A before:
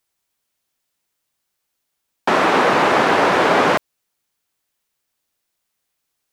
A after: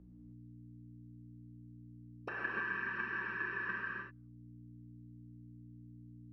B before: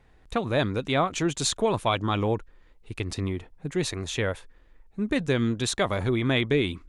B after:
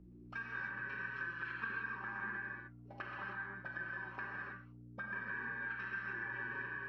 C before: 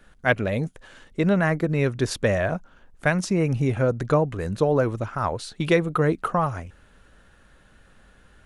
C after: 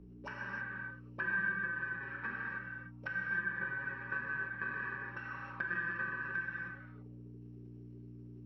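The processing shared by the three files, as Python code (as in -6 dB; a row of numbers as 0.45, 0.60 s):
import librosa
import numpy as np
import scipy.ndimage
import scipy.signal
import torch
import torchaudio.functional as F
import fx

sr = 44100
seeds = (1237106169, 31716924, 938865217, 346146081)

y = fx.bit_reversed(x, sr, seeds[0], block=64)
y = scipy.signal.sosfilt(scipy.signal.butter(2, 3400.0, 'lowpass', fs=sr, output='sos'), y)
y = fx.env_lowpass_down(y, sr, base_hz=1500.0, full_db=-25.5)
y = fx.peak_eq(y, sr, hz=690.0, db=-8.5, octaves=1.1)
y = y + 0.8 * np.pad(y, (int(5.2 * sr / 1000.0), 0))[:len(y)]
y = fx.transient(y, sr, attack_db=4, sustain_db=-1)
y = fx.level_steps(y, sr, step_db=10)
y = fx.auto_wah(y, sr, base_hz=320.0, top_hz=1600.0, q=12.0, full_db=-31.5, direction='up')
y = fx.add_hum(y, sr, base_hz=60, snr_db=12)
y = fx.rev_gated(y, sr, seeds[1], gate_ms=340, shape='flat', drr_db=-4.5)
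y = fx.band_squash(y, sr, depth_pct=40)
y = F.gain(torch.from_numpy(y), 7.0).numpy()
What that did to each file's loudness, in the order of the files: -23.5, -15.5, -14.5 LU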